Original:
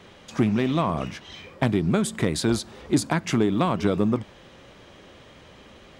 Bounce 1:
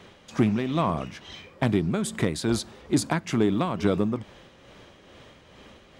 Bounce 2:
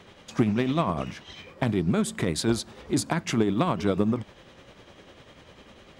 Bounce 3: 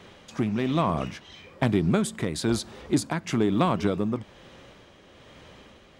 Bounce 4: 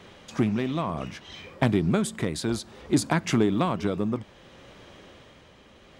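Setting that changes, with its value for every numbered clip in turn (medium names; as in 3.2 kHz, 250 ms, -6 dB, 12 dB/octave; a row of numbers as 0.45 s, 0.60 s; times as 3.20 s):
tremolo, rate: 2.3 Hz, 10 Hz, 1.1 Hz, 0.62 Hz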